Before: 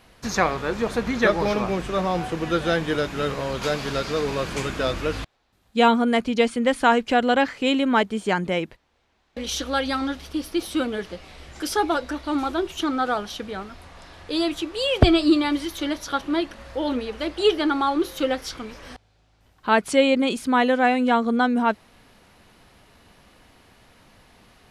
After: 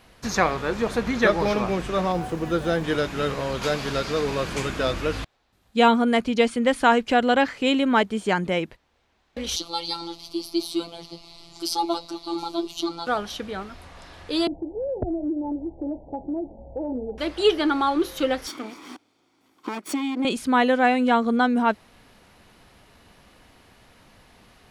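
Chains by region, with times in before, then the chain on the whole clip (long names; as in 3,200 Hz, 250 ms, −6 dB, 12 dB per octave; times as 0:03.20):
0:02.12–0:02.84: parametric band 2,800 Hz −6.5 dB 2.4 octaves + centre clipping without the shift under −46.5 dBFS
0:09.56–0:13.07: parametric band 4,400 Hz +13.5 dB 0.38 octaves + phaser with its sweep stopped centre 330 Hz, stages 8 + phases set to zero 169 Hz
0:14.47–0:17.18: Butterworth low-pass 860 Hz 96 dB per octave + downward compressor 4 to 1, threshold −25 dBFS
0:18.47–0:20.25: lower of the sound and its delayed copy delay 0.88 ms + downward compressor 16 to 1, threshold −28 dBFS + high-pass with resonance 300 Hz, resonance Q 3.7
whole clip: no processing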